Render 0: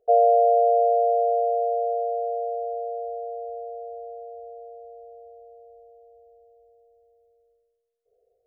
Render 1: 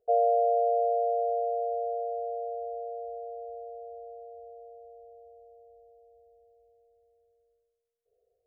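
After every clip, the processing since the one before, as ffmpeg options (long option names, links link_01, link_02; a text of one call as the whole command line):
ffmpeg -i in.wav -af "equalizer=frequency=75:width=0.31:gain=6,volume=-7.5dB" out.wav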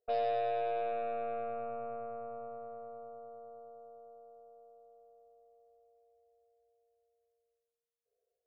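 ffmpeg -i in.wav -af "lowshelf=frequency=270:gain=-10,aeval=exprs='0.141*(cos(1*acos(clip(val(0)/0.141,-1,1)))-cos(1*PI/2))+0.00631*(cos(2*acos(clip(val(0)/0.141,-1,1)))-cos(2*PI/2))+0.00501*(cos(3*acos(clip(val(0)/0.141,-1,1)))-cos(3*PI/2))+0.00141*(cos(7*acos(clip(val(0)/0.141,-1,1)))-cos(7*PI/2))+0.00891*(cos(8*acos(clip(val(0)/0.141,-1,1)))-cos(8*PI/2))':channel_layout=same,volume=-6.5dB" out.wav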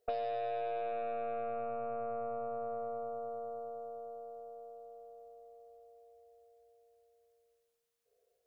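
ffmpeg -i in.wav -af "acompressor=threshold=-42dB:ratio=10,volume=8.5dB" out.wav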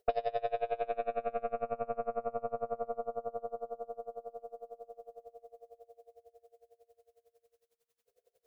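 ffmpeg -i in.wav -af "aeval=exprs='val(0)*pow(10,-26*(0.5-0.5*cos(2*PI*11*n/s))/20)':channel_layout=same,volume=8dB" out.wav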